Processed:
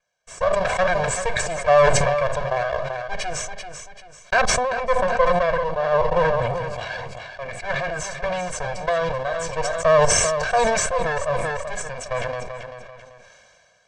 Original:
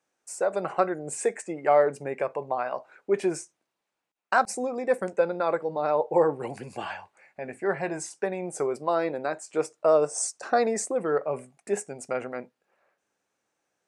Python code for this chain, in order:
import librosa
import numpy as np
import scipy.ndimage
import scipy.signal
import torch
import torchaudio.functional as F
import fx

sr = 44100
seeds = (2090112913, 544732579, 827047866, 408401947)

y = fx.lower_of_two(x, sr, delay_ms=1.3)
y = fx.high_shelf(y, sr, hz=4500.0, db=-6.5, at=(4.41, 6.78))
y = scipy.signal.sosfilt(scipy.signal.butter(4, 6900.0, 'lowpass', fs=sr, output='sos'), y)
y = fx.low_shelf(y, sr, hz=190.0, db=-4.5)
y = y + 0.96 * np.pad(y, (int(1.8 * sr / 1000.0), 0))[:len(y)]
y = fx.echo_feedback(y, sr, ms=388, feedback_pct=18, wet_db=-12.5)
y = fx.sustainer(y, sr, db_per_s=23.0)
y = y * librosa.db_to_amplitude(2.0)